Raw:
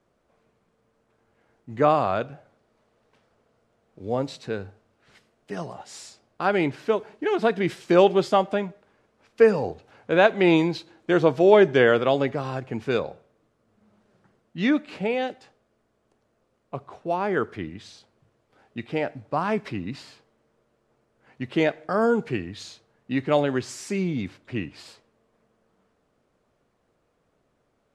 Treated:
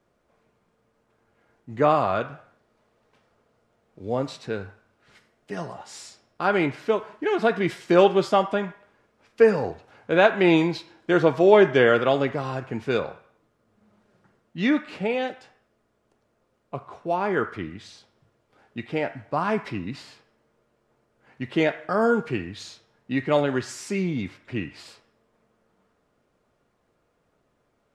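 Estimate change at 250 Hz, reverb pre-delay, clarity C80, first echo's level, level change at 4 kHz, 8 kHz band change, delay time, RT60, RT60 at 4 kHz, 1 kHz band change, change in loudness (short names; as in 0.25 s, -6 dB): 0.0 dB, 3 ms, 16.0 dB, none, +0.5 dB, n/a, none, 0.60 s, 0.60 s, +0.5 dB, 0.0 dB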